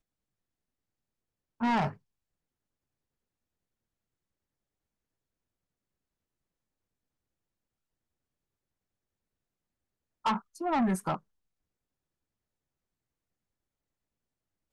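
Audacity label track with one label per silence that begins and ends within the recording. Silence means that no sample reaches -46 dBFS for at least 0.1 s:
1.940000	10.250000	silence
10.400000	10.550000	silence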